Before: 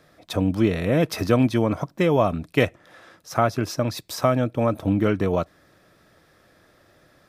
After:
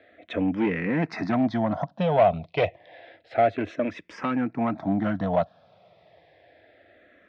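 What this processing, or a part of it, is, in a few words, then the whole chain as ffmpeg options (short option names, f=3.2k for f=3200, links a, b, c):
barber-pole phaser into a guitar amplifier: -filter_complex "[0:a]asplit=2[a][b];[b]afreqshift=-0.29[c];[a][c]amix=inputs=2:normalize=1,asoftclip=type=tanh:threshold=-18dB,highpass=110,equalizer=f=130:t=q:w=4:g=-5,equalizer=f=370:t=q:w=4:g=-4,equalizer=f=690:t=q:w=4:g=9,equalizer=f=1.2k:t=q:w=4:g=-6,equalizer=f=2k:t=q:w=4:g=5,lowpass=f=3.7k:w=0.5412,lowpass=f=3.7k:w=1.3066,volume=2dB"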